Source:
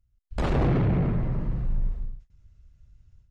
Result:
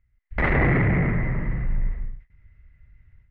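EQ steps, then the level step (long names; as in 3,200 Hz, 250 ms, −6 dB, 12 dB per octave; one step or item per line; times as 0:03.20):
low-pass with resonance 2,000 Hz, resonance Q 11
+2.0 dB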